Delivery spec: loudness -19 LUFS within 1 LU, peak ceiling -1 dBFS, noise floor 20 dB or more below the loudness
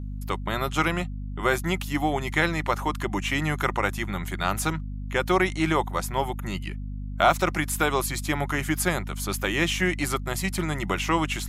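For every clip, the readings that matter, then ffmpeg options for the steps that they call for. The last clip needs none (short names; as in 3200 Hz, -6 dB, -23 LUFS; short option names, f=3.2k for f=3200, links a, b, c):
hum 50 Hz; harmonics up to 250 Hz; hum level -30 dBFS; loudness -26.0 LUFS; peak -6.5 dBFS; loudness target -19.0 LUFS
-> -af "bandreject=f=50:t=h:w=4,bandreject=f=100:t=h:w=4,bandreject=f=150:t=h:w=4,bandreject=f=200:t=h:w=4,bandreject=f=250:t=h:w=4"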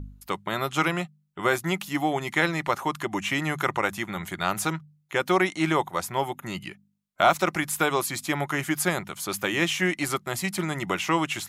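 hum none; loudness -26.5 LUFS; peak -7.0 dBFS; loudness target -19.0 LUFS
-> -af "volume=7.5dB,alimiter=limit=-1dB:level=0:latency=1"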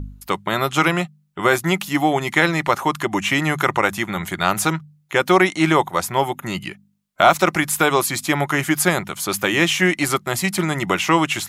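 loudness -19.0 LUFS; peak -1.0 dBFS; noise floor -58 dBFS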